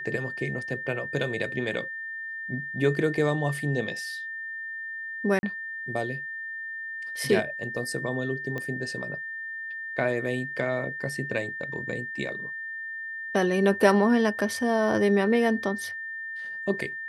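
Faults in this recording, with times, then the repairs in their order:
tone 1800 Hz -33 dBFS
5.39–5.43 gap 41 ms
8.58 pop -20 dBFS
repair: de-click; notch 1800 Hz, Q 30; interpolate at 5.39, 41 ms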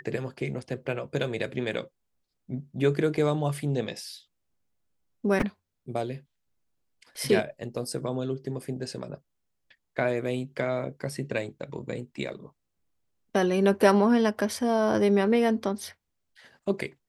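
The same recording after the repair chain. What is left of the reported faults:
none

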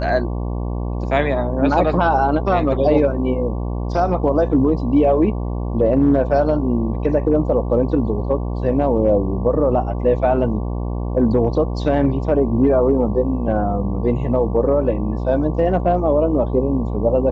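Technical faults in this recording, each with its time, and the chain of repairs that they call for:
buzz 60 Hz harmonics 19 -23 dBFS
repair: de-hum 60 Hz, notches 19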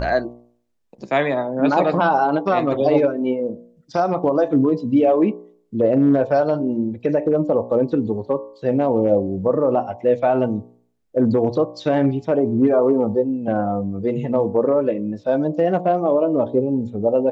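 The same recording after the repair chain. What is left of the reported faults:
none

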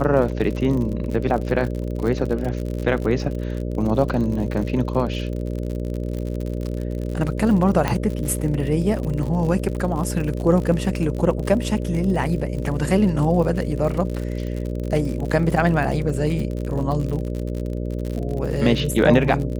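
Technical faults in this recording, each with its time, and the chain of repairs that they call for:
buzz 60 Hz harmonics 10 -26 dBFS
crackle 58/s -27 dBFS
7.88 pop -7 dBFS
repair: de-click; de-hum 60 Hz, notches 10

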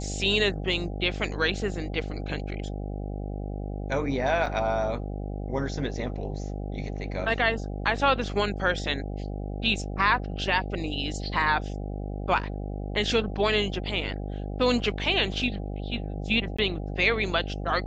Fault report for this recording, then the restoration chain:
buzz 50 Hz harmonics 16 -33 dBFS
4.46 gap 3.7 ms
16.57–16.59 gap 15 ms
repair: de-hum 50 Hz, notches 16; interpolate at 4.46, 3.7 ms; interpolate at 16.57, 15 ms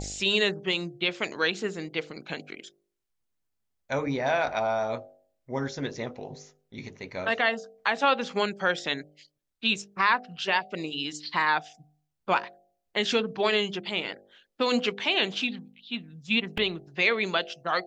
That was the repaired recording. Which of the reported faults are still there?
none

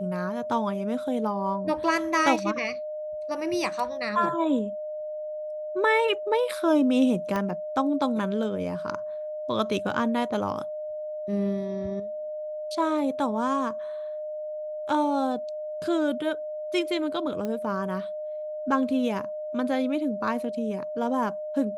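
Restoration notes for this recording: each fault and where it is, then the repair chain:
tone 610 Hz -31 dBFS
7.36 pop -16 dBFS
17.45 pop -19 dBFS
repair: de-click; notch 610 Hz, Q 30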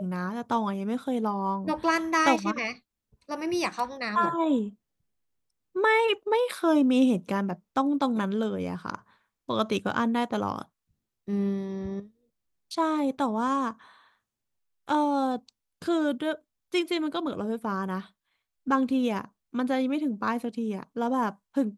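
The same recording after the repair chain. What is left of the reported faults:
7.36 pop

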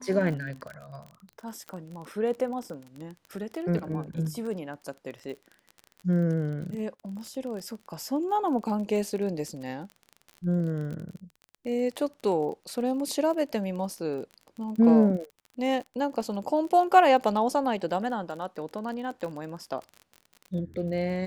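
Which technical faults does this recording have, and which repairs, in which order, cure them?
crackle 31/s -35 dBFS
1.69 pop -23 dBFS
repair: de-click

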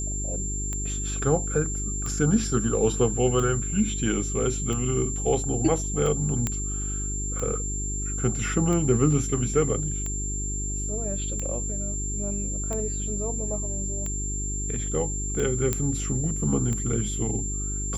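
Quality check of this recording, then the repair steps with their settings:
hum 50 Hz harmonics 8 -31 dBFS
tick 45 rpm -19 dBFS
tone 7300 Hz -31 dBFS
6.47 pop -11 dBFS
15.73 pop -10 dBFS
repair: de-click; notch 7300 Hz, Q 30; de-hum 50 Hz, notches 8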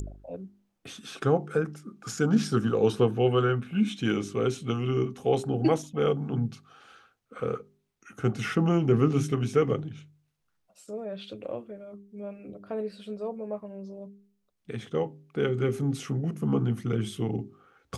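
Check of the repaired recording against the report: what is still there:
none

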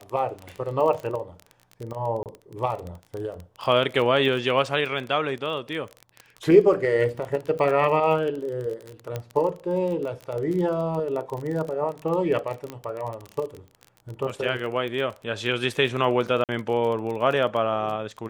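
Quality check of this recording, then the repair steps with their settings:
crackle 24/s -29 dBFS
2.23–2.26 gap 28 ms
9.16 pop -16 dBFS
12.7 pop -19 dBFS
16.44–16.49 gap 48 ms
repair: de-click; interpolate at 2.23, 28 ms; interpolate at 16.44, 48 ms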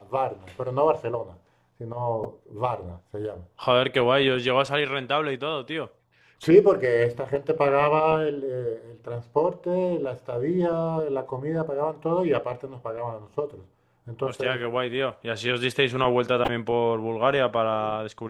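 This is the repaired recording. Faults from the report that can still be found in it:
none

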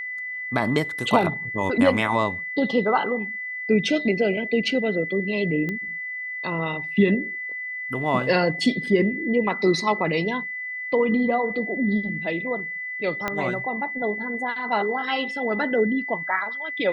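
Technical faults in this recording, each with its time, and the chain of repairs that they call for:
tone 2000 Hz -29 dBFS
5.69 pop -17 dBFS
13.28 pop -11 dBFS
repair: de-click; notch 2000 Hz, Q 30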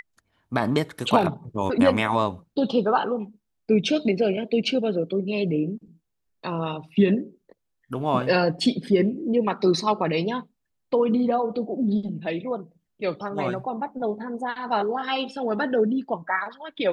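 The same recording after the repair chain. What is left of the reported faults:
13.28 pop

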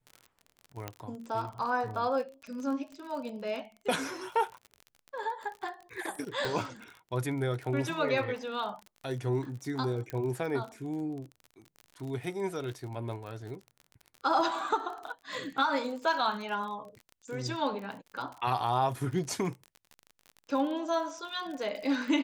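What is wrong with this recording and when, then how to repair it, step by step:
crackle 41/s -38 dBFS
0.88 pop -20 dBFS
6.45 pop
10.1 pop -22 dBFS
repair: de-click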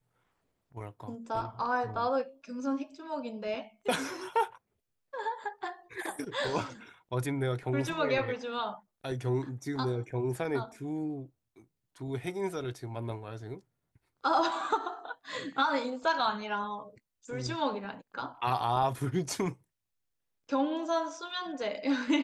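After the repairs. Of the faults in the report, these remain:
0.88 pop
6.45 pop

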